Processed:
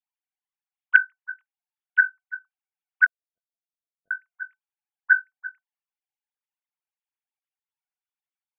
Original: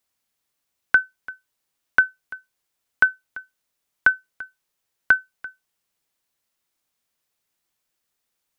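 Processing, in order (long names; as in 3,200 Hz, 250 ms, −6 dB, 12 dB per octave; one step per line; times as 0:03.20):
three sine waves on the formant tracks
0:03.06–0:04.11: Chebyshev low-pass with heavy ripple 700 Hz, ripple 6 dB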